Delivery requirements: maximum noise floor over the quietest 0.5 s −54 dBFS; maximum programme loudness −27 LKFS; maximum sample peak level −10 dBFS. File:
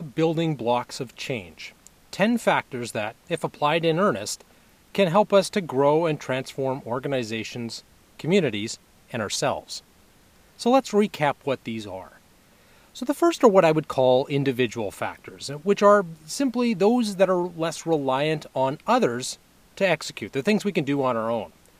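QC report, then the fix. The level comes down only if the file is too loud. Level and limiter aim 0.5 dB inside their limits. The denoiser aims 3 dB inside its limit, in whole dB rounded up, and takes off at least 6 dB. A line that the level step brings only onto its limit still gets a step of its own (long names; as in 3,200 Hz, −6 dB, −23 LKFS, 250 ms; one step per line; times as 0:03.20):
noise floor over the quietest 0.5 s −56 dBFS: in spec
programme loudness −24.0 LKFS: out of spec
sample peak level −2.5 dBFS: out of spec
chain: level −3.5 dB
brickwall limiter −10.5 dBFS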